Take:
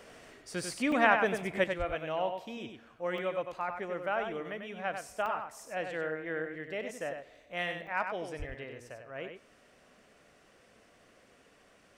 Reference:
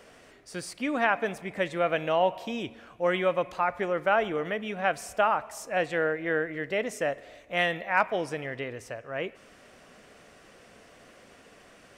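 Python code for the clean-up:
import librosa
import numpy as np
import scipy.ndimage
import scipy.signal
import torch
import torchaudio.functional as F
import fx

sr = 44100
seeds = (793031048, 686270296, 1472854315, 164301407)

y = fx.highpass(x, sr, hz=140.0, slope=24, at=(1.78, 1.9), fade=0.02)
y = fx.highpass(y, sr, hz=140.0, slope=24, at=(8.38, 8.5), fade=0.02)
y = fx.fix_interpolate(y, sr, at_s=(0.92, 3.18, 5.26, 7.87), length_ms=2.8)
y = fx.fix_echo_inverse(y, sr, delay_ms=96, level_db=-6.5)
y = fx.fix_level(y, sr, at_s=1.64, step_db=9.0)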